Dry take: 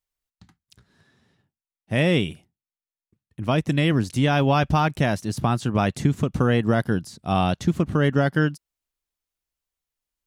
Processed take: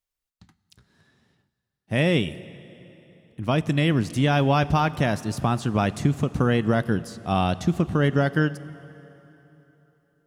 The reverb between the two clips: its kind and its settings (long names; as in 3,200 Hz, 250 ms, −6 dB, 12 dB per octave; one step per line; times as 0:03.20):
dense smooth reverb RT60 3.5 s, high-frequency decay 0.85×, DRR 16 dB
level −1 dB